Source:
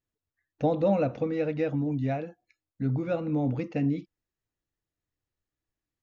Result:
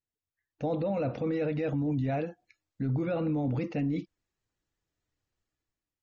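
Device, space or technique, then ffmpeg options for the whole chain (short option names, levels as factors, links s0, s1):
low-bitrate web radio: -af "dynaudnorm=f=200:g=7:m=3.76,alimiter=limit=0.168:level=0:latency=1:release=11,volume=0.422" -ar 48000 -c:a libmp3lame -b:a 32k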